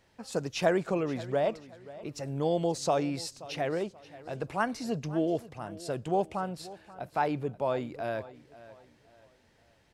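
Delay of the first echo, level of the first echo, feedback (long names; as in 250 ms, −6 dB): 531 ms, −18.0 dB, 34%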